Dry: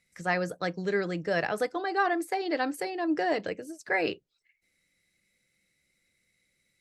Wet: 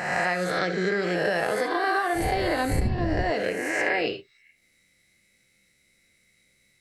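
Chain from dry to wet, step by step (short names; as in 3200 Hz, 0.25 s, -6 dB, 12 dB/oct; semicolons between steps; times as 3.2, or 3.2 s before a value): spectral swells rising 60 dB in 1.16 s; 2.14–3.22 wind noise 120 Hz -27 dBFS; non-linear reverb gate 0.1 s flat, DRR 8 dB; compressor 6:1, threshold -27 dBFS, peak gain reduction 13.5 dB; gain +5.5 dB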